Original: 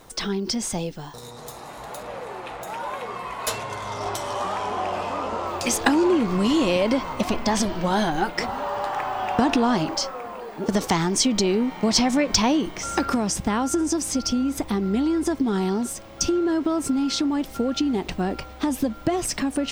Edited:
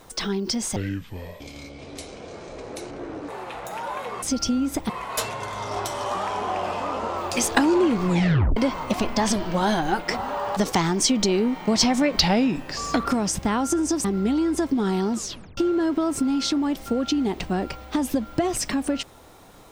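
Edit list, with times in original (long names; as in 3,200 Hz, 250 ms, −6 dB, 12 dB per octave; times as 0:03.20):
0:00.76–0:02.25: play speed 59%
0:06.37: tape stop 0.49 s
0:08.86–0:10.72: remove
0:12.34–0:13.07: play speed 84%
0:14.06–0:14.73: move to 0:03.19
0:15.82: tape stop 0.44 s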